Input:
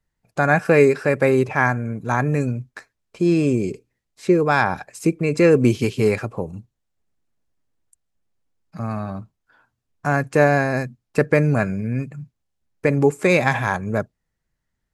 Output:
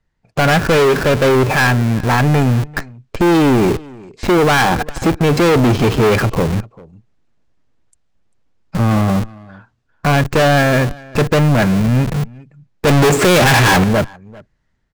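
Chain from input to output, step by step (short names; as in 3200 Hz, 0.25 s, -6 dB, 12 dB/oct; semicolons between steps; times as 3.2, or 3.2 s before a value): AGC gain up to 4.5 dB; air absorption 93 m; overloaded stage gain 20.5 dB; on a send: echo 0.395 s -20 dB; 12.87–13.84 on the sum: sample leveller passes 5; in parallel at -3.5 dB: Schmitt trigger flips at -32.5 dBFS; on the sum: gain +8 dB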